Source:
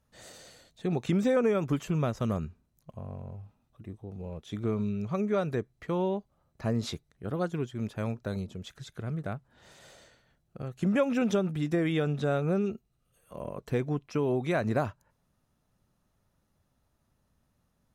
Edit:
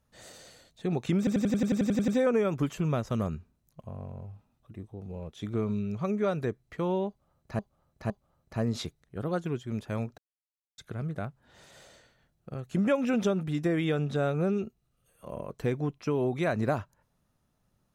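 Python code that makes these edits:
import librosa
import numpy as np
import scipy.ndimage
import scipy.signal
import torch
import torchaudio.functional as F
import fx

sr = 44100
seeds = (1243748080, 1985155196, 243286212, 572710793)

y = fx.edit(x, sr, fx.stutter(start_s=1.18, slice_s=0.09, count=11),
    fx.repeat(start_s=6.18, length_s=0.51, count=3),
    fx.silence(start_s=8.26, length_s=0.6), tone=tone)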